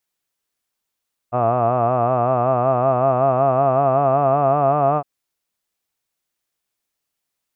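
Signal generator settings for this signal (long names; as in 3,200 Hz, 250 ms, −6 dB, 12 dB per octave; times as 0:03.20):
vowel from formants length 3.71 s, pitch 118 Hz, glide +3.5 semitones, F1 680 Hz, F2 1,200 Hz, F3 2,600 Hz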